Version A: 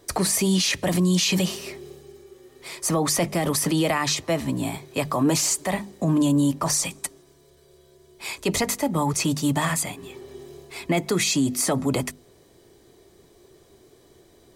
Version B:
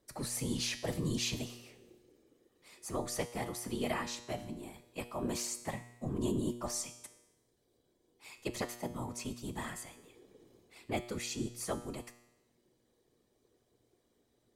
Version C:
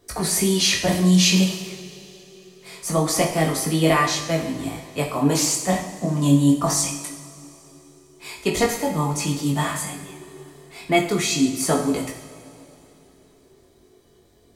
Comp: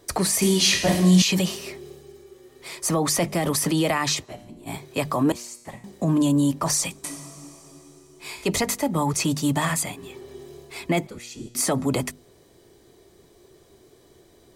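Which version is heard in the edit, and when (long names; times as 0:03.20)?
A
0:00.42–0:01.22: punch in from C
0:04.25–0:04.68: punch in from B, crossfade 0.06 s
0:05.32–0:05.84: punch in from B
0:07.04–0:08.46: punch in from C
0:11.07–0:11.55: punch in from B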